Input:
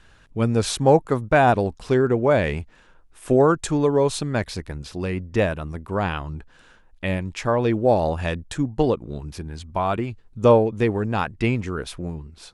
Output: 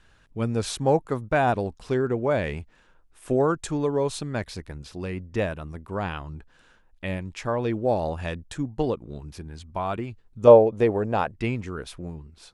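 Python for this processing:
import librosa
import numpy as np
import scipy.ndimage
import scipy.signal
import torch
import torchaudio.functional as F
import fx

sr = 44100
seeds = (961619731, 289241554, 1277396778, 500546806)

y = fx.peak_eq(x, sr, hz=590.0, db=10.5, octaves=1.2, at=(10.47, 11.32))
y = F.gain(torch.from_numpy(y), -5.5).numpy()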